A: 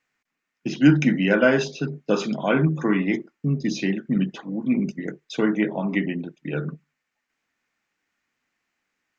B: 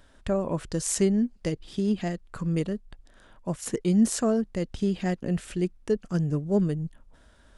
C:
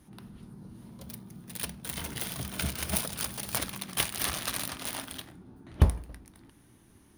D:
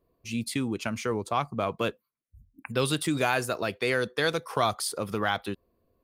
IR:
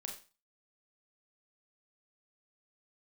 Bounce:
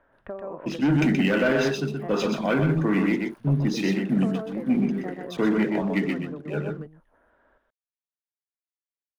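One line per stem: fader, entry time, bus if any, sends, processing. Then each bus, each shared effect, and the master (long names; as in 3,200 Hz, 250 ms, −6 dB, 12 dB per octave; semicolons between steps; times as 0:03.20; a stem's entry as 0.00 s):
−7.0 dB, 0.00 s, no bus, no send, echo send −5 dB, Bessel low-pass filter 5,200 Hz; leveller curve on the samples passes 2; multiband upward and downward expander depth 70%
+0.5 dB, 0.00 s, bus A, send −20.5 dB, echo send −8.5 dB, three-way crossover with the lows and the highs turned down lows −18 dB, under 320 Hz, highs −23 dB, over 2,300 Hz
−9.5 dB, 0.00 s, bus A, no send, echo send −16.5 dB, guitar amp tone stack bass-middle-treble 10-0-10; downward compressor, threshold −40 dBFS, peak gain reduction 16 dB
−20.0 dB, 0.70 s, bus A, no send, no echo send, no processing
bus A: 0.0 dB, low-pass filter 2,000 Hz 12 dB per octave; downward compressor, threshold −34 dBFS, peak gain reduction 11.5 dB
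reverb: on, RT60 0.35 s, pre-delay 29 ms
echo: single-tap delay 125 ms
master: brickwall limiter −13 dBFS, peak gain reduction 9 dB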